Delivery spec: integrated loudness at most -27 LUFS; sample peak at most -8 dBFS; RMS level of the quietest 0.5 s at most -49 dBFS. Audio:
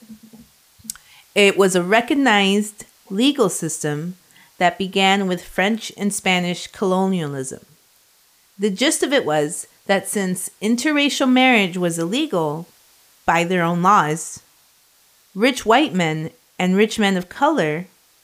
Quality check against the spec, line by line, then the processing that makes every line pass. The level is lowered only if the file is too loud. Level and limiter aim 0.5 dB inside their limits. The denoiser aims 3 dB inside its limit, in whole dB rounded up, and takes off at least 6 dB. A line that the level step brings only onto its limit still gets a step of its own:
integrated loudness -18.5 LUFS: fail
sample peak -3.5 dBFS: fail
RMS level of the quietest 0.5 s -56 dBFS: pass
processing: trim -9 dB

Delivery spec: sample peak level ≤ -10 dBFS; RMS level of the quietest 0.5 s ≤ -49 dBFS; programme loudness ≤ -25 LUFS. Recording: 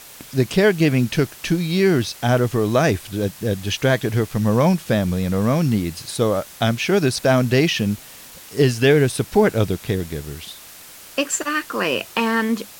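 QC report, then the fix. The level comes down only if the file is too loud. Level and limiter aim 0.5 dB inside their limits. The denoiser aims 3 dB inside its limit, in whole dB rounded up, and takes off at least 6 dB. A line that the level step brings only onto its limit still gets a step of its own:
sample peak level -5.0 dBFS: fail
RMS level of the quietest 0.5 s -42 dBFS: fail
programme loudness -19.5 LUFS: fail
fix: noise reduction 6 dB, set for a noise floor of -42 dBFS; trim -6 dB

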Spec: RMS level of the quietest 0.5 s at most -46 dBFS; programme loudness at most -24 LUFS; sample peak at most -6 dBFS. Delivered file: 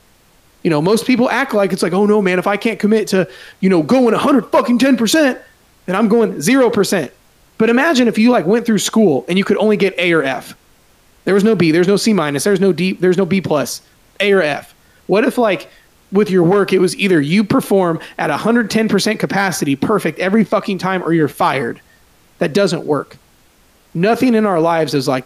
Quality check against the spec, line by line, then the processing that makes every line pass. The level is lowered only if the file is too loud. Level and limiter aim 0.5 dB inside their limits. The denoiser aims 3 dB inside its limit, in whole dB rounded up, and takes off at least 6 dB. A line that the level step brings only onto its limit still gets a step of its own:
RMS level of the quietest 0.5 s -51 dBFS: pass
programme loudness -14.5 LUFS: fail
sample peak -3.5 dBFS: fail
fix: trim -10 dB

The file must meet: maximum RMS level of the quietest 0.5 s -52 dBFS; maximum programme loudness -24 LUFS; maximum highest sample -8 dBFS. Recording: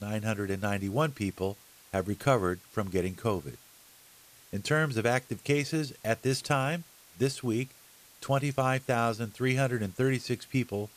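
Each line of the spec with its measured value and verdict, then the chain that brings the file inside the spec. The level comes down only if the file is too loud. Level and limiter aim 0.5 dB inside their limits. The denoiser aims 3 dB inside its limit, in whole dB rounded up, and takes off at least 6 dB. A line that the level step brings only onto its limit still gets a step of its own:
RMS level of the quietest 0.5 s -57 dBFS: pass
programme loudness -30.5 LUFS: pass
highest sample -11.0 dBFS: pass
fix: none needed

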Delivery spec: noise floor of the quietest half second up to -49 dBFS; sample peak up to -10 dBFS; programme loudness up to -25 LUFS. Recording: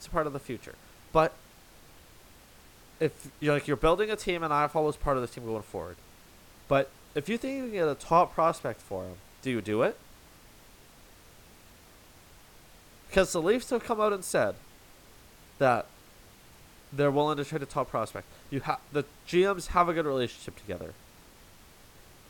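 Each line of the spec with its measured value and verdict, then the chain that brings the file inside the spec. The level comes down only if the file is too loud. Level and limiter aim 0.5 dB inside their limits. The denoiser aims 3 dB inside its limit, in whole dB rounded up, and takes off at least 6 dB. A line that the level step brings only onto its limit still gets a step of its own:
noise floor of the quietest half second -55 dBFS: pass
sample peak -9.0 dBFS: fail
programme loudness -29.5 LUFS: pass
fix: peak limiter -10.5 dBFS

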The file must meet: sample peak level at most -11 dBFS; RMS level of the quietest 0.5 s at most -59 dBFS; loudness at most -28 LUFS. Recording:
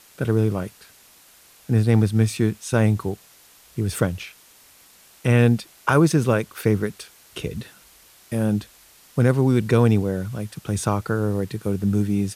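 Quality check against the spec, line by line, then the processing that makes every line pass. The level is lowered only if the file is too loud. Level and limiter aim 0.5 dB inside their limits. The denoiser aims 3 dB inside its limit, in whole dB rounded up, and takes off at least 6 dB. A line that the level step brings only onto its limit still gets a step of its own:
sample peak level -5.5 dBFS: fail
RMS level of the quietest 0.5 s -52 dBFS: fail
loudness -22.0 LUFS: fail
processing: noise reduction 6 dB, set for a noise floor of -52 dBFS; trim -6.5 dB

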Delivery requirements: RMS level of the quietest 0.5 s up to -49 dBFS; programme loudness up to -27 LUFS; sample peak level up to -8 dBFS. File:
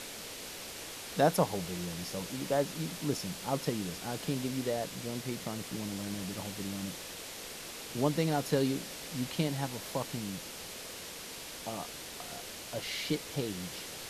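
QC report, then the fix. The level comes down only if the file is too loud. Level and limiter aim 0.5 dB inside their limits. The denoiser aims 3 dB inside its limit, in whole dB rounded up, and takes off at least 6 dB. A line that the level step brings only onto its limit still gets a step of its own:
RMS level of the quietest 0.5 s -44 dBFS: fail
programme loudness -35.5 LUFS: pass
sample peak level -13.0 dBFS: pass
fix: noise reduction 8 dB, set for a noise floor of -44 dBFS

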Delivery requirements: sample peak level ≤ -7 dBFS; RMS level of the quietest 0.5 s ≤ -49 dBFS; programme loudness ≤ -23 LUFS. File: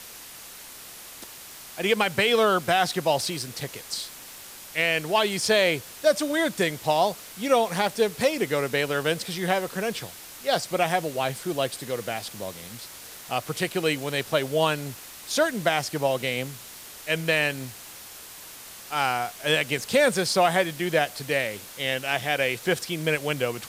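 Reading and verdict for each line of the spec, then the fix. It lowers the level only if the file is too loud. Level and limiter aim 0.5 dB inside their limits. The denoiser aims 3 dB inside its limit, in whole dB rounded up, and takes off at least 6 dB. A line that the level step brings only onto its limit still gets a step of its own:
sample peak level -8.0 dBFS: pass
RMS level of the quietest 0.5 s -43 dBFS: fail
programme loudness -25.0 LUFS: pass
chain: noise reduction 9 dB, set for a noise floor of -43 dBFS

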